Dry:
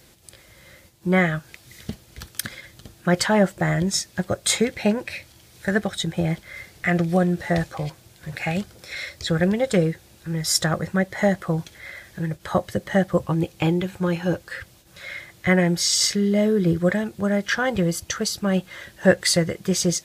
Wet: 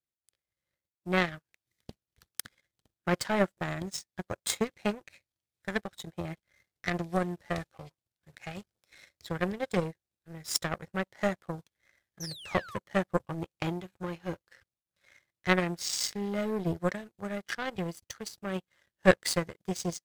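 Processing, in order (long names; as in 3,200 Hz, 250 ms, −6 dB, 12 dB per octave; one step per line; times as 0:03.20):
sound drawn into the spectrogram fall, 0:12.20–0:12.79, 940–6,300 Hz −26 dBFS
power curve on the samples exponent 2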